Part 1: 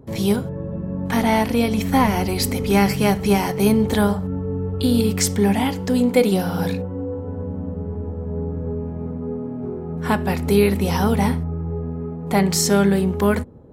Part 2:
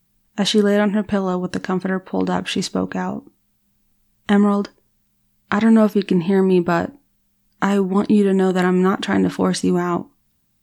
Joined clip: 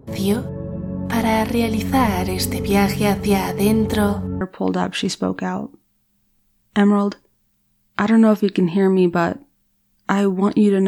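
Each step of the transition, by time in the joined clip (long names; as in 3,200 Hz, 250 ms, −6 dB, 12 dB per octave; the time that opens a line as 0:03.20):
part 1
0:04.41: continue with part 2 from 0:01.94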